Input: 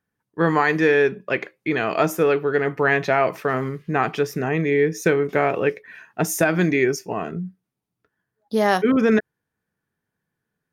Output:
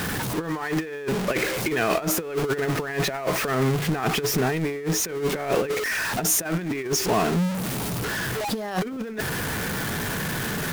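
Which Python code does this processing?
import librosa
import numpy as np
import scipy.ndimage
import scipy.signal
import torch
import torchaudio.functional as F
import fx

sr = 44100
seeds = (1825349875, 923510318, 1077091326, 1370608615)

y = x + 0.5 * 10.0 ** (-22.5 / 20.0) * np.sign(x)
y = fx.over_compress(y, sr, threshold_db=-21.0, ratio=-0.5)
y = y * librosa.db_to_amplitude(-2.5)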